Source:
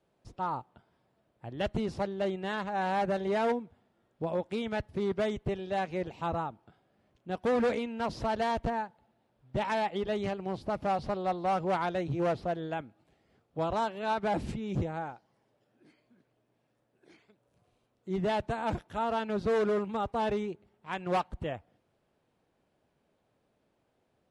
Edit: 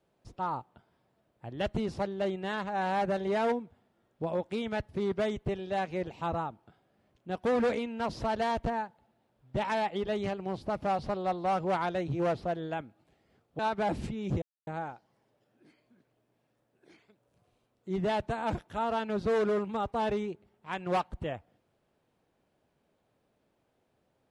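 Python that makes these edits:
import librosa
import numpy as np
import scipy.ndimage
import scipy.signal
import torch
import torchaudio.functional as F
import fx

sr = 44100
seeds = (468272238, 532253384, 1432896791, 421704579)

y = fx.edit(x, sr, fx.cut(start_s=13.59, length_s=0.45),
    fx.insert_silence(at_s=14.87, length_s=0.25), tone=tone)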